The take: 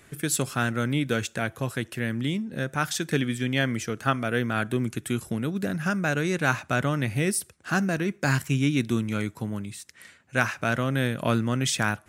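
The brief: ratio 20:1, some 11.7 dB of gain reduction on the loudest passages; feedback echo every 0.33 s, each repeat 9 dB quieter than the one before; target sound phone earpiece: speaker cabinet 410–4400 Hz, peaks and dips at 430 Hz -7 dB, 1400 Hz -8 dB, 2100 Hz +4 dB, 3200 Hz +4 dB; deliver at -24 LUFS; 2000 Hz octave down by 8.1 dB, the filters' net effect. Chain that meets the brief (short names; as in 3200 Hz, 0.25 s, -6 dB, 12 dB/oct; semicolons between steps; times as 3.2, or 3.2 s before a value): bell 2000 Hz -8.5 dB; compressor 20:1, threshold -31 dBFS; speaker cabinet 410–4400 Hz, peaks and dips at 430 Hz -7 dB, 1400 Hz -8 dB, 2100 Hz +4 dB, 3200 Hz +4 dB; feedback echo 0.33 s, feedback 35%, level -9 dB; gain +19.5 dB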